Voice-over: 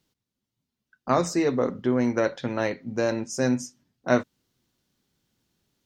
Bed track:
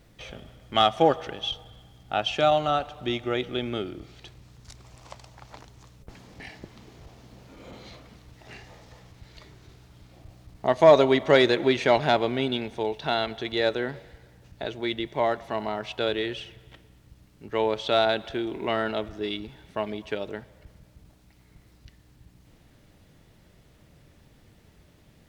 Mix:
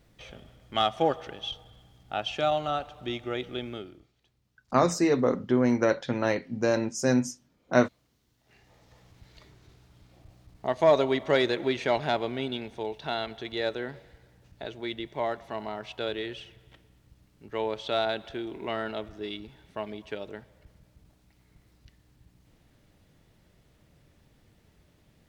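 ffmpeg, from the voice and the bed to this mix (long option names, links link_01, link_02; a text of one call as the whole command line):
ffmpeg -i stem1.wav -i stem2.wav -filter_complex "[0:a]adelay=3650,volume=0dB[link_01];[1:a]volume=13dB,afade=type=out:start_time=3.59:duration=0.53:silence=0.11885,afade=type=in:start_time=8.42:duration=0.73:silence=0.125893[link_02];[link_01][link_02]amix=inputs=2:normalize=0" out.wav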